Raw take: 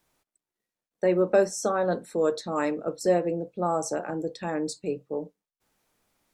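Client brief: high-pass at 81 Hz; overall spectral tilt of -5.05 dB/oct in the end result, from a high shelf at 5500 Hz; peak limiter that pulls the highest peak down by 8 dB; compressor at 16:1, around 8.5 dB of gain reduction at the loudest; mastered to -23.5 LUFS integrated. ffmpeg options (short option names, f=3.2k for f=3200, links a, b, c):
-af "highpass=81,highshelf=f=5.5k:g=-6,acompressor=threshold=-24dB:ratio=16,volume=10.5dB,alimiter=limit=-13dB:level=0:latency=1"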